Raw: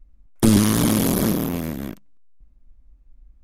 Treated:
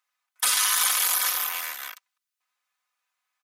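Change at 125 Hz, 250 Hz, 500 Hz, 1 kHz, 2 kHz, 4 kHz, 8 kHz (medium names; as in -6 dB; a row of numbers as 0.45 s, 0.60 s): under -40 dB, under -40 dB, -22.5 dB, 0.0 dB, +5.0 dB, +4.5 dB, +4.5 dB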